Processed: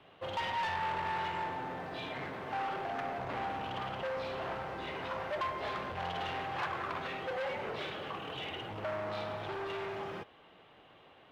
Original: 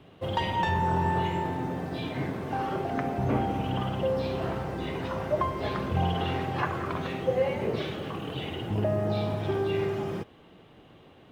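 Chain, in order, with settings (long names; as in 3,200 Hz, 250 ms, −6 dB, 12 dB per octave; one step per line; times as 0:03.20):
hard clipping −30 dBFS, distortion −7 dB
three-way crossover with the lows and the highs turned down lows −13 dB, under 540 Hz, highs −12 dB, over 4,300 Hz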